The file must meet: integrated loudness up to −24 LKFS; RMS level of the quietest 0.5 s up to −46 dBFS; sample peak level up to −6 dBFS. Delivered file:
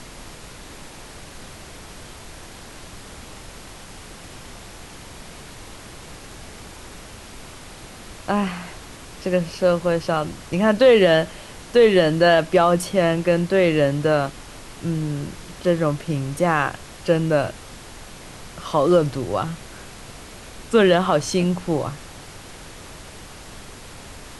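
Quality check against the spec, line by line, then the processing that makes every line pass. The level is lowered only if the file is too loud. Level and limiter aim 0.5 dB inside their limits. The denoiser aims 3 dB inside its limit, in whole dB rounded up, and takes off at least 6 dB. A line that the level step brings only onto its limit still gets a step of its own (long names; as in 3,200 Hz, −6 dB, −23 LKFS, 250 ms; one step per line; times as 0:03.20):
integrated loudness −20.0 LKFS: out of spec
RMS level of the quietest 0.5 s −40 dBFS: out of spec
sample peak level −4.5 dBFS: out of spec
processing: broadband denoise 6 dB, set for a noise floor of −40 dBFS
level −4.5 dB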